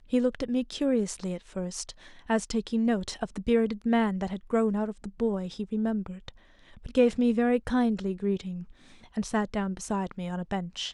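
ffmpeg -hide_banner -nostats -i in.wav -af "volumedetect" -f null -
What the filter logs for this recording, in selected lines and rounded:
mean_volume: -28.7 dB
max_volume: -10.8 dB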